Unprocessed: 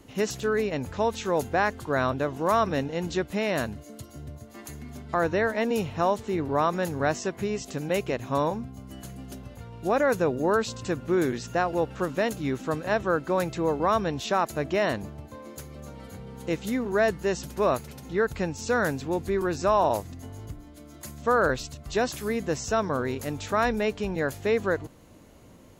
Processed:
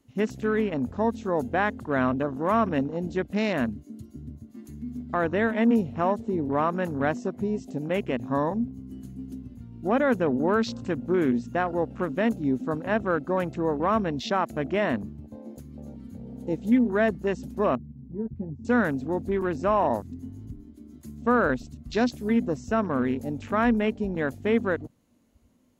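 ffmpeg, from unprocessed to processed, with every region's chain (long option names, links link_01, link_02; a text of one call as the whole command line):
ffmpeg -i in.wav -filter_complex "[0:a]asettb=1/sr,asplit=3[link_01][link_02][link_03];[link_01]atrim=end=17.754[link_04];[link_02]atrim=start=17.75:end=18.65,asetpts=PTS-STARTPTS,afade=type=in:duration=0.004:curve=qsin,afade=type=out:start_time=0.896:duration=0.004:curve=qsin,bandpass=frequency=120:width_type=q:width=1.1,asplit=2[link_05][link_06];[link_06]adelay=14,volume=-6.5dB[link_07];[link_05][link_07]amix=inputs=2:normalize=0,atrim=end_sample=39690[link_08];[link_03]atrim=start=18.646[link_09];[link_04][link_08]acrossfade=duration=0.004:curve1=hsin:curve2=qsin[link_10];[link_10][link_09]acrossfade=duration=0.004:curve1=qsin:curve2=hsin,highshelf=frequency=2600:gain=4.5,afwtdn=0.0178,equalizer=frequency=240:width_type=o:width=0.35:gain=12.5,volume=-1.5dB" out.wav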